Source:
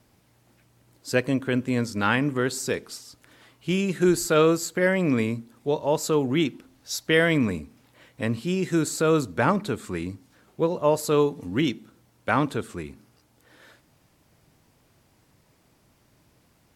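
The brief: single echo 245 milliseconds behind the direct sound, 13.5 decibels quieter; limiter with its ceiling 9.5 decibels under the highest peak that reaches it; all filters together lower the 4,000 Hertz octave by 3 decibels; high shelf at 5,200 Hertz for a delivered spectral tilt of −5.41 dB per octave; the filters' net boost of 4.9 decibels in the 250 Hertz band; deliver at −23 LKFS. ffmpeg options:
ffmpeg -i in.wav -af "equalizer=frequency=250:width_type=o:gain=6.5,equalizer=frequency=4000:width_type=o:gain=-6.5,highshelf=frequency=5200:gain=5,alimiter=limit=-15.5dB:level=0:latency=1,aecho=1:1:245:0.211,volume=3dB" out.wav

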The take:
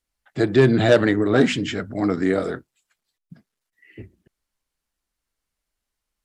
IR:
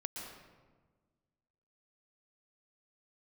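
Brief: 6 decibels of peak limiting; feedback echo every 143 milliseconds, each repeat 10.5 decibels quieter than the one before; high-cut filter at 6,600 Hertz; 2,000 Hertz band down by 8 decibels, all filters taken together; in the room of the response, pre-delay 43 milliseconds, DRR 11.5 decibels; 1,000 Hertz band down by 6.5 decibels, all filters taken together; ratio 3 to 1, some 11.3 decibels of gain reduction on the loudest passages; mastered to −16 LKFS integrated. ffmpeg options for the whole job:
-filter_complex "[0:a]lowpass=6600,equalizer=frequency=1000:width_type=o:gain=-8.5,equalizer=frequency=2000:width_type=o:gain=-7,acompressor=threshold=-27dB:ratio=3,alimiter=limit=-22dB:level=0:latency=1,aecho=1:1:143|286|429:0.299|0.0896|0.0269,asplit=2[link_01][link_02];[1:a]atrim=start_sample=2205,adelay=43[link_03];[link_02][link_03]afir=irnorm=-1:irlink=0,volume=-11dB[link_04];[link_01][link_04]amix=inputs=2:normalize=0,volume=15.5dB"

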